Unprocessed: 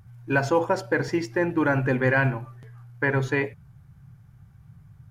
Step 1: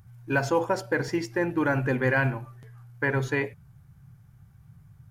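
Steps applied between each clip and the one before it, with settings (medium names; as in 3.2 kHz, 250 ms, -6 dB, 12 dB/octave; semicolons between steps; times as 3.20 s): treble shelf 7.1 kHz +7 dB; trim -2.5 dB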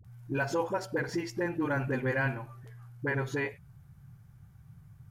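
phase dispersion highs, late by 47 ms, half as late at 420 Hz; in parallel at +2.5 dB: compression, threshold -33 dBFS, peak gain reduction 14 dB; on the sum: trim -8.5 dB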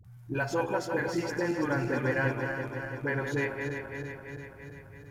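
backward echo that repeats 168 ms, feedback 78%, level -6 dB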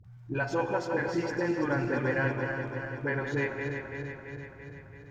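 boxcar filter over 4 samples; on a send at -13 dB: reverberation, pre-delay 3 ms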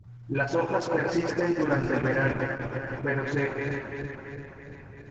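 resampled via 16 kHz; trim +4 dB; Opus 10 kbps 48 kHz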